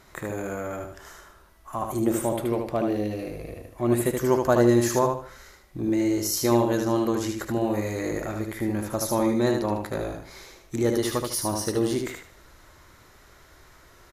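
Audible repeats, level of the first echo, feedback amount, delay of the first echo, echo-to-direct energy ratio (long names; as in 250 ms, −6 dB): 3, −4.5 dB, 29%, 76 ms, −4.0 dB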